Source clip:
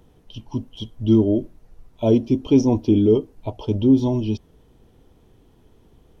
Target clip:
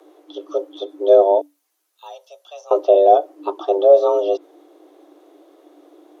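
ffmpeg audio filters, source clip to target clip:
-filter_complex "[0:a]acrossover=split=3100[a][b];[b]acompressor=threshold=-54dB:ratio=4:attack=1:release=60[c];[a][c]amix=inputs=2:normalize=0,asettb=1/sr,asplit=3[d][e][f];[d]atrim=end=1.414[g];[e]atrim=start=1.41:end=2.71,asetpts=PTS-STARTPTS,afade=t=in:d=0.004:c=qsin,afade=t=out:st=1.296:d=0.004:c=qsin,aderivative[h];[f]atrim=start=2.706[i];[g][h]acrossfade=d=0.004:c1=hsin:c2=qsin[j];[j][i]acrossfade=d=0.004:c1=qsin:c2=hsin,afreqshift=290,volume=4dB"

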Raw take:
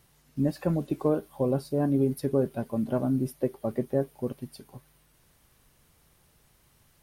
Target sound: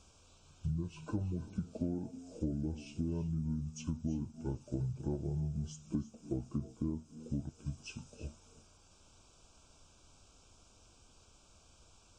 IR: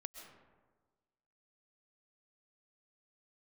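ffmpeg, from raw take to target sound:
-filter_complex "[0:a]acompressor=threshold=-35dB:ratio=6[a];[1:a]atrim=start_sample=2205,afade=t=out:st=0.17:d=0.01,atrim=end_sample=7938,asetrate=26901,aresample=44100[b];[a][b]afir=irnorm=-1:irlink=0,asetrate=25442,aresample=44100,asuperstop=centerf=1900:order=8:qfactor=2.6,volume=3.5dB"

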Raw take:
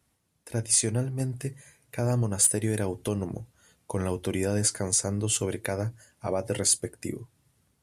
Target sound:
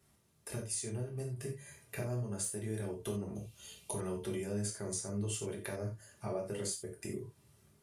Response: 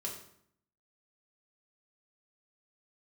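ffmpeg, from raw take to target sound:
-filter_complex "[0:a]acompressor=threshold=-41dB:ratio=4,asettb=1/sr,asplit=3[a][b][c];[a]atrim=end=3.354[d];[b]atrim=start=3.35:end=3.91,asetpts=PTS-STARTPTS,afade=t=in:d=0.004:c=qsin,afade=t=out:st=0.556:d=0.004:c=qsin,highshelf=f=2.1k:t=q:w=3:g=7.5[e];[c]atrim=start=3.906[f];[d][e]acrossfade=d=0.004:c1=hsin:c2=qsin[g];[g][f]acrossfade=d=0.004:c1=qsin:c2=hsin[h];[1:a]atrim=start_sample=2205,atrim=end_sample=4410[i];[h][i]afir=irnorm=-1:irlink=0,volume=2.5dB"

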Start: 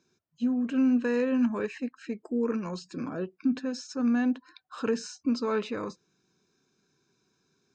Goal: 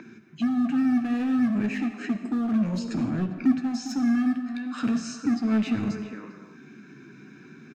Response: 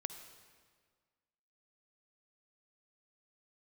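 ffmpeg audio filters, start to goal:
-filter_complex "[0:a]equalizer=f=125:t=o:w=1:g=11,equalizer=f=250:t=o:w=1:g=10,equalizer=f=500:t=o:w=1:g=-12,equalizer=f=1k:t=o:w=1:g=-9,equalizer=f=2k:t=o:w=1:g=8,equalizer=f=4k:t=o:w=1:g=-4,asplit=2[a][b];[b]adelay=400,highpass=300,lowpass=3.4k,asoftclip=type=hard:threshold=-17.5dB,volume=-16dB[c];[a][c]amix=inputs=2:normalize=0,acrossover=split=170[d][e];[e]acompressor=threshold=-30dB:ratio=4[f];[d][f]amix=inputs=2:normalize=0,asplit=2[g][h];[h]aeval=exprs='0.0237*(abs(mod(val(0)/0.0237+3,4)-2)-1)':c=same,volume=-5.5dB[i];[g][i]amix=inputs=2:normalize=0,flanger=delay=8.9:depth=5.9:regen=51:speed=0.35:shape=sinusoidal[j];[1:a]atrim=start_sample=2205,afade=t=out:st=0.33:d=0.01,atrim=end_sample=14994[k];[j][k]afir=irnorm=-1:irlink=0,acrossover=split=230|2400[l][m][n];[m]acompressor=mode=upward:threshold=-40dB:ratio=2.5[o];[l][o][n]amix=inputs=3:normalize=0,volume=9dB"

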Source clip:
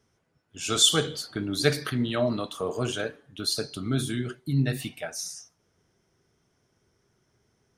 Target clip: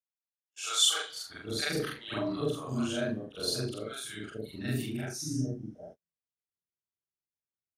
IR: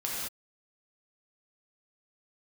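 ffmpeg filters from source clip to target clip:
-filter_complex "[0:a]afftfilt=real='re':imag='-im':win_size=4096:overlap=0.75,acrossover=split=620[a][b];[a]adelay=800[c];[c][b]amix=inputs=2:normalize=0,agate=range=-34dB:threshold=-49dB:ratio=16:detection=peak"

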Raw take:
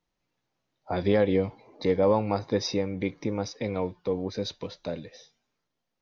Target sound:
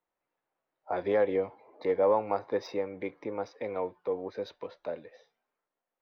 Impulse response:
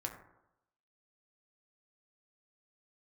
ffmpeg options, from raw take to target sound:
-filter_complex "[0:a]adynamicsmooth=sensitivity=2.5:basefreq=5.1k,acrossover=split=370 2200:gain=0.126 1 0.2[a][b][c];[a][b][c]amix=inputs=3:normalize=0"

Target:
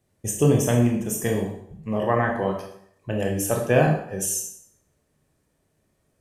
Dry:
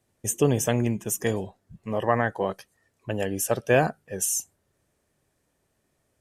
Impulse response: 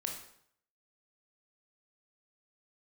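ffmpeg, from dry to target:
-filter_complex "[0:a]lowshelf=f=320:g=5.5[a];[1:a]atrim=start_sample=2205[b];[a][b]afir=irnorm=-1:irlink=0"

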